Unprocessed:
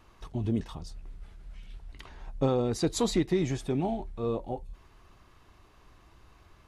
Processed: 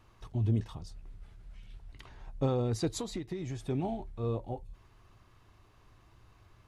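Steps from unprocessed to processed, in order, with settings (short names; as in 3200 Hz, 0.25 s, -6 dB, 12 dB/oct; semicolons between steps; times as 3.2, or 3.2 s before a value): bell 110 Hz +10 dB 0.4 oct; 2.87–3.66 compressor 12:1, threshold -29 dBFS, peak gain reduction 9.5 dB; gain -4.5 dB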